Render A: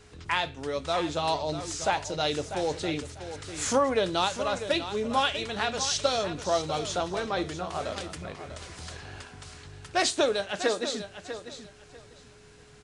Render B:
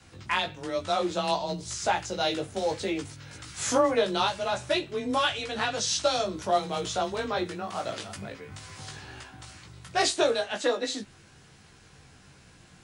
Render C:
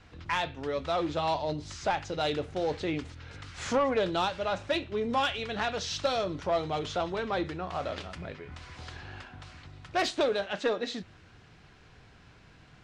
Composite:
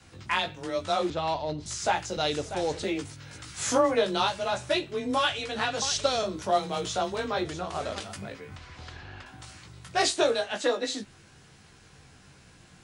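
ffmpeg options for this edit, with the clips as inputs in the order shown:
-filter_complex "[2:a]asplit=2[a][b];[0:a]asplit=3[c][d][e];[1:a]asplit=6[f][g][h][i][j][k];[f]atrim=end=1.102[l];[a]atrim=start=1.098:end=1.662[m];[g]atrim=start=1.658:end=2.172[n];[c]atrim=start=2.168:end=2.842[o];[h]atrim=start=2.838:end=5.822[p];[d]atrim=start=5.818:end=6.232[q];[i]atrim=start=6.228:end=7.452[r];[e]atrim=start=7.448:end=8.002[s];[j]atrim=start=7.998:end=8.562[t];[b]atrim=start=8.558:end=9.262[u];[k]atrim=start=9.258[v];[l][m]acrossfade=d=0.004:c1=hsin:c2=hsin[w];[w][n]acrossfade=d=0.004:c1=hsin:c2=hsin[x];[x][o]acrossfade=d=0.004:c1=hsin:c2=hsin[y];[y][p]acrossfade=d=0.004:c1=hsin:c2=hsin[z];[z][q]acrossfade=d=0.004:c1=hsin:c2=hsin[aa];[aa][r]acrossfade=d=0.004:c1=hsin:c2=hsin[ab];[ab][s]acrossfade=d=0.004:c1=hsin:c2=hsin[ac];[ac][t]acrossfade=d=0.004:c1=hsin:c2=hsin[ad];[ad][u]acrossfade=d=0.004:c1=hsin:c2=hsin[ae];[ae][v]acrossfade=d=0.004:c1=hsin:c2=hsin"

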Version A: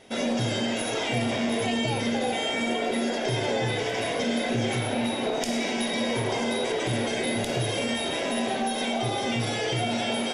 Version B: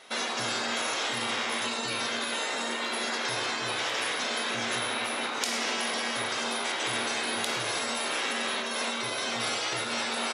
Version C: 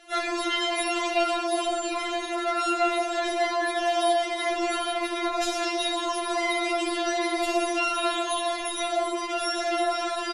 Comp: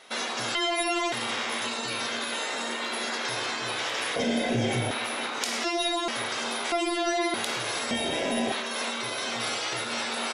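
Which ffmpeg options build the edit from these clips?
-filter_complex "[2:a]asplit=3[a][b][c];[0:a]asplit=2[d][e];[1:a]asplit=6[f][g][h][i][j][k];[f]atrim=end=0.552[l];[a]atrim=start=0.548:end=1.122[m];[g]atrim=start=1.118:end=4.162[n];[d]atrim=start=4.158:end=4.912[o];[h]atrim=start=4.908:end=5.642[p];[b]atrim=start=5.638:end=6.082[q];[i]atrim=start=6.078:end=6.722[r];[c]atrim=start=6.718:end=7.342[s];[j]atrim=start=7.338:end=7.912[t];[e]atrim=start=7.908:end=8.522[u];[k]atrim=start=8.518[v];[l][m]acrossfade=d=0.004:c1=hsin:c2=hsin[w];[w][n]acrossfade=d=0.004:c1=hsin:c2=hsin[x];[x][o]acrossfade=d=0.004:c1=hsin:c2=hsin[y];[y][p]acrossfade=d=0.004:c1=hsin:c2=hsin[z];[z][q]acrossfade=d=0.004:c1=hsin:c2=hsin[aa];[aa][r]acrossfade=d=0.004:c1=hsin:c2=hsin[ab];[ab][s]acrossfade=d=0.004:c1=hsin:c2=hsin[ac];[ac][t]acrossfade=d=0.004:c1=hsin:c2=hsin[ad];[ad][u]acrossfade=d=0.004:c1=hsin:c2=hsin[ae];[ae][v]acrossfade=d=0.004:c1=hsin:c2=hsin"

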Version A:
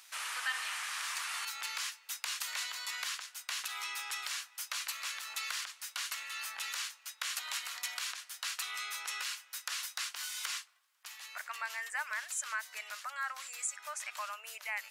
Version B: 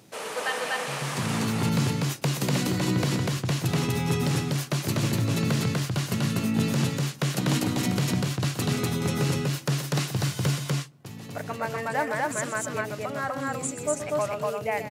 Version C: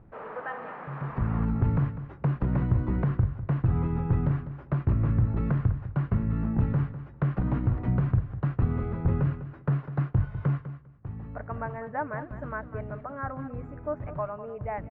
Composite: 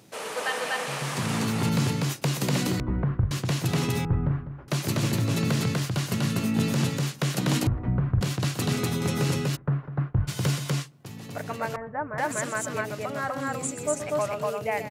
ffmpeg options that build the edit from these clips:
-filter_complex "[2:a]asplit=5[a][b][c][d][e];[1:a]asplit=6[f][g][h][i][j][k];[f]atrim=end=2.802[l];[a]atrim=start=2.798:end=3.312[m];[g]atrim=start=3.308:end=4.052[n];[b]atrim=start=4.048:end=4.682[o];[h]atrim=start=4.678:end=7.672[p];[c]atrim=start=7.668:end=8.212[q];[i]atrim=start=8.208:end=9.57[r];[d]atrim=start=9.55:end=10.29[s];[j]atrim=start=10.27:end=11.762[t];[e]atrim=start=11.758:end=12.182[u];[k]atrim=start=12.178[v];[l][m]acrossfade=d=0.004:c1=hsin:c2=hsin[w];[w][n]acrossfade=d=0.004:c1=hsin:c2=hsin[x];[x][o]acrossfade=d=0.004:c1=hsin:c2=hsin[y];[y][p]acrossfade=d=0.004:c1=hsin:c2=hsin[z];[z][q]acrossfade=d=0.004:c1=hsin:c2=hsin[aa];[aa][r]acrossfade=d=0.004:c1=hsin:c2=hsin[ab];[ab][s]acrossfade=d=0.02:c1=tri:c2=tri[ac];[ac][t]acrossfade=d=0.02:c1=tri:c2=tri[ad];[ad][u]acrossfade=d=0.004:c1=hsin:c2=hsin[ae];[ae][v]acrossfade=d=0.004:c1=hsin:c2=hsin"

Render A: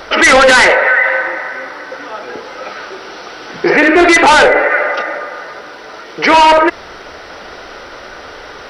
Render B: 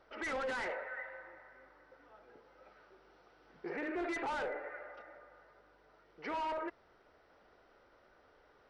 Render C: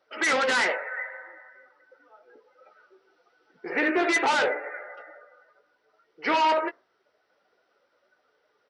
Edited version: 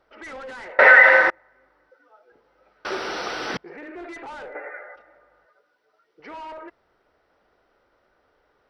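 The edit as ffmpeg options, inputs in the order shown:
-filter_complex "[0:a]asplit=2[a][b];[2:a]asplit=3[c][d][e];[1:a]asplit=6[f][g][h][i][j][k];[f]atrim=end=0.792[l];[a]atrim=start=0.788:end=1.302[m];[g]atrim=start=1.298:end=1.902[n];[c]atrim=start=1.898:end=2.322[o];[h]atrim=start=2.318:end=2.852[p];[b]atrim=start=2.848:end=3.572[q];[i]atrim=start=3.568:end=4.552[r];[d]atrim=start=4.548:end=4.962[s];[j]atrim=start=4.958:end=5.462[t];[e]atrim=start=5.458:end=6.202[u];[k]atrim=start=6.198[v];[l][m]acrossfade=d=0.004:c1=hsin:c2=hsin[w];[w][n]acrossfade=d=0.004:c1=hsin:c2=hsin[x];[x][o]acrossfade=d=0.004:c1=hsin:c2=hsin[y];[y][p]acrossfade=d=0.004:c1=hsin:c2=hsin[z];[z][q]acrossfade=d=0.004:c1=hsin:c2=hsin[aa];[aa][r]acrossfade=d=0.004:c1=hsin:c2=hsin[ab];[ab][s]acrossfade=d=0.004:c1=hsin:c2=hsin[ac];[ac][t]acrossfade=d=0.004:c1=hsin:c2=hsin[ad];[ad][u]acrossfade=d=0.004:c1=hsin:c2=hsin[ae];[ae][v]acrossfade=d=0.004:c1=hsin:c2=hsin"

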